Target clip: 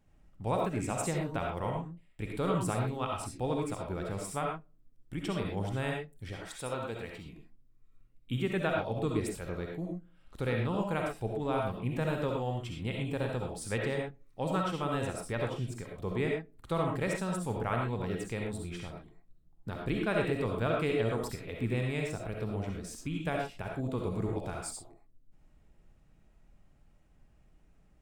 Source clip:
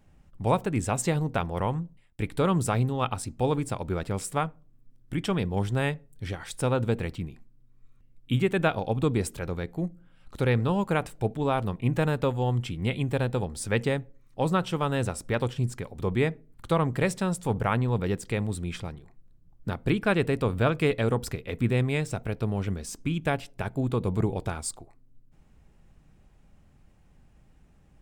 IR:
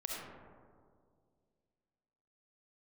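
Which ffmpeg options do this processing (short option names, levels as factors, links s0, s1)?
-filter_complex "[0:a]asettb=1/sr,asplit=3[s0][s1][s2];[s0]atrim=end=6.444[s3];[s1]atrim=start=6.44:end=7.26,asetpts=PTS-STARTPTS,afade=t=in:d=0.004:c=qsin,afade=t=out:st=0.816:d=0.004:c=qsin,lowshelf=f=430:g=-9[s4];[s2]atrim=start=7.256[s5];[s3][s4]acrossfade=d=0.004:c1=hsin:c2=qsin[s6];[s6][s5]acrossfade=d=0.004:c1=qsin:c2=hsin[s7];[1:a]atrim=start_sample=2205,afade=t=out:st=0.18:d=0.01,atrim=end_sample=8379[s8];[s7][s8]afir=irnorm=-1:irlink=0,volume=0.562"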